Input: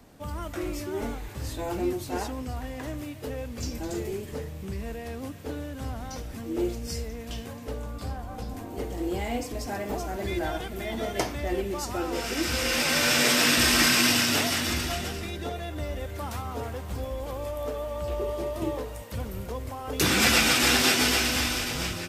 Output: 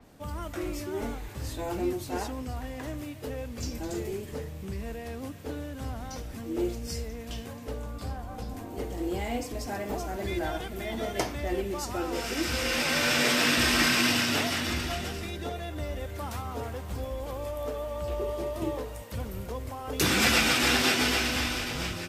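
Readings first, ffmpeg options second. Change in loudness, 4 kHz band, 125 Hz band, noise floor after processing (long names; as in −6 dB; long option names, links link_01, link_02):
−2.5 dB, −3.0 dB, −1.5 dB, −41 dBFS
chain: -af "adynamicequalizer=threshold=0.0126:dfrequency=4900:dqfactor=0.7:tfrequency=4900:tqfactor=0.7:attack=5:release=100:ratio=0.375:range=3:mode=cutabove:tftype=highshelf,volume=-1.5dB"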